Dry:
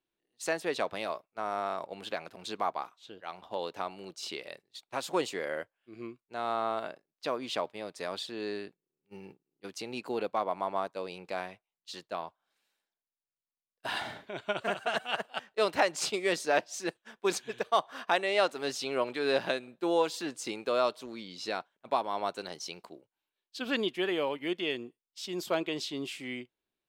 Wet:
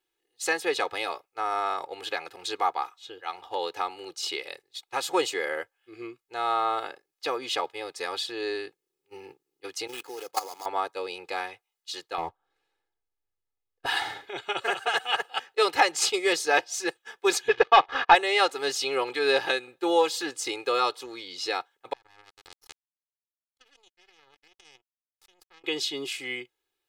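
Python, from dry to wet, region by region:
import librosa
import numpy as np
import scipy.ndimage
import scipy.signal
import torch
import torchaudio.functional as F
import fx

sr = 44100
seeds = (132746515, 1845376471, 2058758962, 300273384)

y = fx.chain(x, sr, fx.level_steps(step_db=14),
    fx.highpass(hz=180.0, slope=6),
    fx.sample_hold(seeds[0], rate_hz=5700.0, jitter_pct=20), at=(9.87, 10.66))
y = fx.chain(y, sr, fx.tilt_eq(slope=-4.5),
    fx.leveller(passes=1), at=(12.18, 13.86))
y = fx.chain(y, sr, fx.leveller(passes=3),
    fx.air_absorb(metres=250.0), at=(17.48, 18.15))
y = fx.chain(y, sr, fx.halfwave_gain(db=-12.0),
    fx.level_steps(step_db=22),
    fx.power_curve(exponent=3.0), at=(21.93, 25.64))
y = fx.low_shelf(y, sr, hz=410.0, db=-10.5)
y = y + 0.98 * np.pad(y, (int(2.4 * sr / 1000.0), 0))[:len(y)]
y = F.gain(torch.from_numpy(y), 5.0).numpy()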